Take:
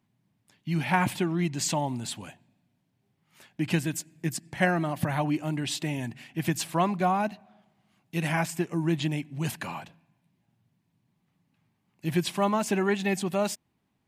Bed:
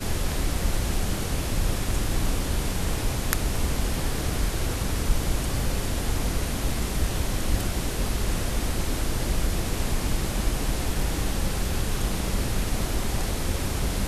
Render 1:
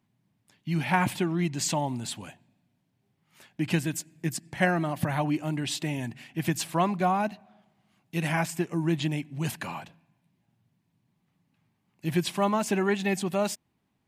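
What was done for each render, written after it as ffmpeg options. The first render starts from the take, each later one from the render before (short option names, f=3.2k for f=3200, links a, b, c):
-af anull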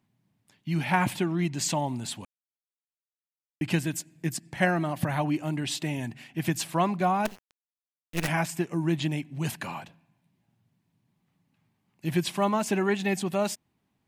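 -filter_complex "[0:a]asettb=1/sr,asplit=3[a][b][c];[a]atrim=end=7.254[d];[b]atrim=start=7.25:end=8.28,asetpts=PTS-STARTPTS,afade=t=in:d=0.004:c=qsin,afade=t=out:st=1.026:d=0.004:c=qsin,acrusher=bits=5:dc=4:mix=0:aa=0.000001[e];[c]atrim=start=8.276[f];[d][e]acrossfade=d=0.004:c1=hsin:c2=qsin[g];[g][f]acrossfade=d=0.004:c1=qsin:c2=hsin,asplit=3[h][i][j];[h]atrim=end=2.25,asetpts=PTS-STARTPTS,afade=t=out:st=2.246:d=0.004:c=hsin[k];[i]atrim=start=2.25:end=3.61,asetpts=PTS-STARTPTS,volume=0[l];[j]atrim=start=3.61,asetpts=PTS-STARTPTS,afade=t=in:d=0.004:c=hsin[m];[k][l][m]concat=n=3:v=0:a=1"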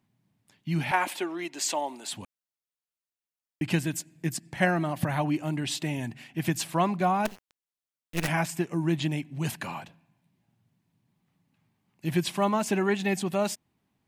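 -filter_complex "[0:a]asettb=1/sr,asplit=3[a][b][c];[a]atrim=end=0.914[d];[b]atrim=start=0.91:end=2.13,asetpts=PTS-STARTPTS,afade=t=in:d=0.004:c=qsin,afade=t=out:st=1.216:d=0.004:c=qsin,highpass=f=340:w=0.5412,highpass=f=340:w=1.3066[e];[c]atrim=start=2.126[f];[d][e]acrossfade=d=0.004:c1=hsin:c2=qsin[g];[g][f]acrossfade=d=0.004:c1=qsin:c2=hsin"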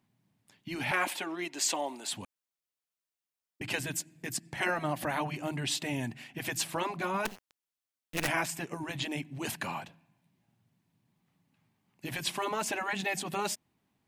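-af "afftfilt=real='re*lt(hypot(re,im),0.282)':imag='im*lt(hypot(re,im),0.282)':win_size=1024:overlap=0.75,lowshelf=f=190:g=-3.5"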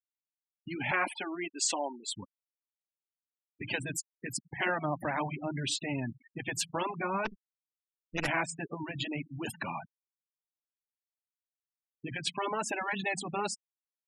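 -af "afftfilt=real='re*gte(hypot(re,im),0.0224)':imag='im*gte(hypot(re,im),0.0224)':win_size=1024:overlap=0.75"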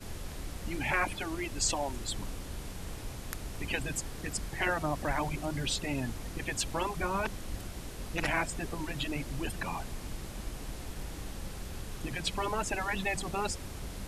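-filter_complex "[1:a]volume=-14.5dB[a];[0:a][a]amix=inputs=2:normalize=0"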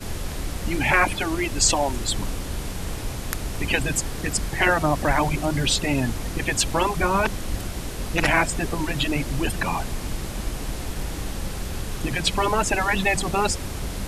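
-af "volume=11dB"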